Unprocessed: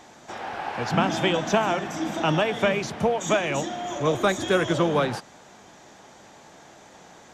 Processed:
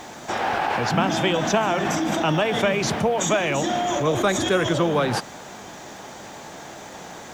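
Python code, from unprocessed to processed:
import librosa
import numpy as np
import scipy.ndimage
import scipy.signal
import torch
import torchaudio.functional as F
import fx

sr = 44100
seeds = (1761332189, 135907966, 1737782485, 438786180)

p1 = fx.over_compress(x, sr, threshold_db=-33.0, ratio=-1.0)
p2 = x + F.gain(torch.from_numpy(p1), 0.5).numpy()
y = fx.quant_dither(p2, sr, seeds[0], bits=10, dither='triangular')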